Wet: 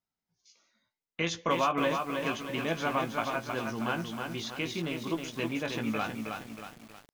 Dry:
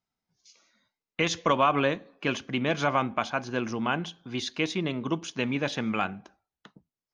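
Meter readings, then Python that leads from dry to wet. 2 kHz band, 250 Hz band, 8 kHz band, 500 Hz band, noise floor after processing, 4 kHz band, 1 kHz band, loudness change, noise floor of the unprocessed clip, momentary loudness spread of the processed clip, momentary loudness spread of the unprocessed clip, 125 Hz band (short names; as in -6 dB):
-3.5 dB, -3.5 dB, -3.0 dB, -3.5 dB, under -85 dBFS, -3.5 dB, -3.5 dB, -4.0 dB, under -85 dBFS, 11 LU, 9 LU, -4.5 dB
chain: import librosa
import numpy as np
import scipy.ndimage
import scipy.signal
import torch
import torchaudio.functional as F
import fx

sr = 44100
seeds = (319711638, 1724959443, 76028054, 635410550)

y = fx.doubler(x, sr, ms=18.0, db=-6.0)
y = fx.echo_crushed(y, sr, ms=317, feedback_pct=55, bits=7, wet_db=-4.5)
y = F.gain(torch.from_numpy(y), -6.0).numpy()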